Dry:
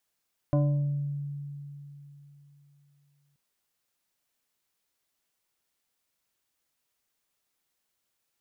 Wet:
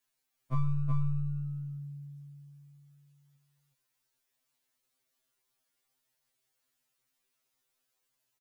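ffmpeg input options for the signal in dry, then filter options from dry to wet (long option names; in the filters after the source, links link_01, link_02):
-f lavfi -i "aevalsrc='0.106*pow(10,-3*t/3.44)*sin(2*PI*143*t+1*pow(10,-3*t/1.04)*sin(2*PI*3.07*143*t))':duration=2.83:sample_rate=44100"
-filter_complex "[0:a]aeval=exprs='clip(val(0),-1,0.015)':channel_layout=same,asplit=2[link_01][link_02];[link_02]aecho=0:1:372:0.596[link_03];[link_01][link_03]amix=inputs=2:normalize=0,afftfilt=real='re*2.45*eq(mod(b,6),0)':imag='im*2.45*eq(mod(b,6),0)':win_size=2048:overlap=0.75"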